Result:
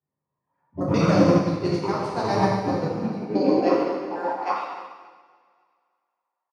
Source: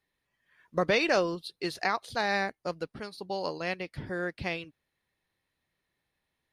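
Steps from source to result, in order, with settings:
pitch shifter gated in a rhythm −11 semitones, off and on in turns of 67 ms
low-pass that shuts in the quiet parts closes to 1,700 Hz, open at −24.5 dBFS
flat-topped bell 2,400 Hz −11 dB
brickwall limiter −24 dBFS, peak gain reduction 8.5 dB
far-end echo of a speakerphone 100 ms, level −10 dB
high-pass filter sweep 120 Hz → 900 Hz, 0:02.62–0:04.41
on a send: repeating echo 281 ms, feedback 45%, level −15.5 dB
on the sum: dense smooth reverb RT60 2 s, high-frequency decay 0.95×, DRR −6.5 dB
expander for the loud parts 1.5 to 1, over −49 dBFS
level +6.5 dB

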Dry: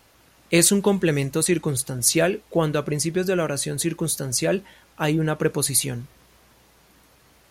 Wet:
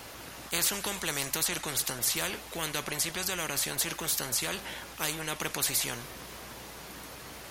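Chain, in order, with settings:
low-shelf EQ 150 Hz −5 dB
every bin compressed towards the loudest bin 4 to 1
level −9 dB

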